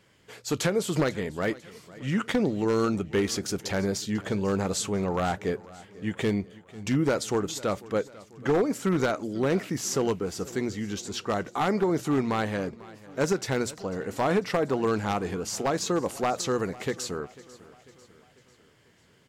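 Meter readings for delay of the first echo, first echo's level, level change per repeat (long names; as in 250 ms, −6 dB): 495 ms, −20.0 dB, −5.5 dB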